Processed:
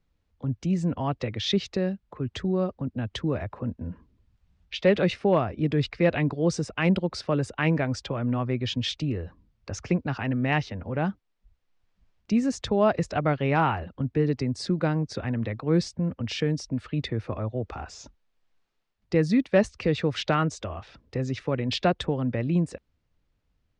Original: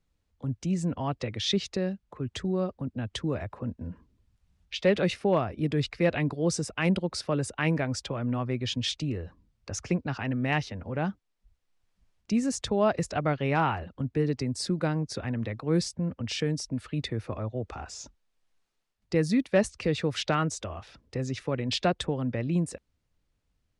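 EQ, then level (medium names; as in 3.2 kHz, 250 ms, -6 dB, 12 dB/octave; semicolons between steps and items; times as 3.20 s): distance through air 100 m; +3.0 dB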